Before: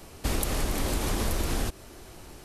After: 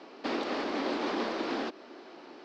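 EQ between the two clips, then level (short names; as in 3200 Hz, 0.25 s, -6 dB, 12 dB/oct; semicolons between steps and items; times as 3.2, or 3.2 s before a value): elliptic band-pass 260–4800 Hz, stop band 40 dB; high shelf 3300 Hz -9 dB; +2.5 dB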